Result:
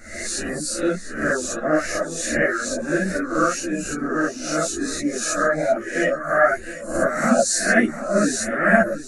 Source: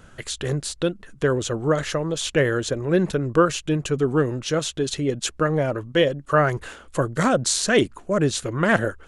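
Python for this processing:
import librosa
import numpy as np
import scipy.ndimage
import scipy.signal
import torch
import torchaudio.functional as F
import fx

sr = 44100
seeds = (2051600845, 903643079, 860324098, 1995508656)

p1 = fx.spec_swells(x, sr, rise_s=0.62)
p2 = fx.dereverb_blind(p1, sr, rt60_s=1.2)
p3 = fx.rider(p2, sr, range_db=4, speed_s=0.5)
p4 = p2 + F.gain(torch.from_numpy(p3), -1.0).numpy()
p5 = fx.fixed_phaser(p4, sr, hz=650.0, stages=8)
p6 = p5 + fx.echo_single(p5, sr, ms=712, db=-13.5, dry=0)
p7 = fx.rev_gated(p6, sr, seeds[0], gate_ms=80, shape='rising', drr_db=-3.5)
p8 = fx.ensemble(p7, sr)
y = F.gain(torch.from_numpy(p8), -3.5).numpy()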